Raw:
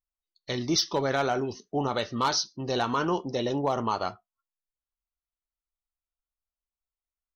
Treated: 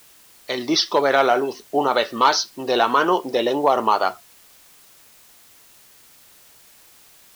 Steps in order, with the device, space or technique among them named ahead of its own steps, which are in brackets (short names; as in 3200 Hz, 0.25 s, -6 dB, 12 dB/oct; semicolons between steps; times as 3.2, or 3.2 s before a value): dictaphone (BPF 380–4100 Hz; AGC; wow and flutter; white noise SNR 28 dB)